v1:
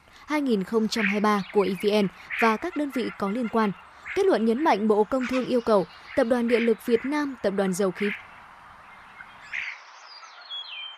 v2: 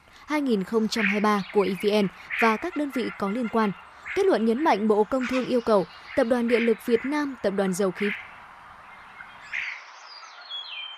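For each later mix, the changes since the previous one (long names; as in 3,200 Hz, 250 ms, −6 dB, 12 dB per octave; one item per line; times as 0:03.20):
background: send +9.0 dB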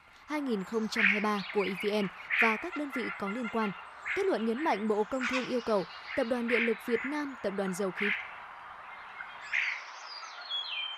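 speech −8.5 dB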